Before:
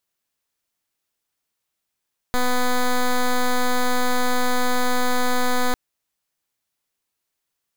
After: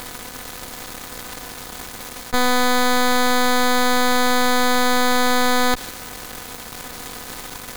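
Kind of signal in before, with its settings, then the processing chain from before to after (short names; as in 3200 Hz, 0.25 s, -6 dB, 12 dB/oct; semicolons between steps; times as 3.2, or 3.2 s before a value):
pulse 249 Hz, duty 9% -18.5 dBFS 3.40 s
per-bin compression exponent 0.4; dynamic EQ 3300 Hz, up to +5 dB, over -41 dBFS, Q 1.1; in parallel at -9 dB: fuzz box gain 52 dB, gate -45 dBFS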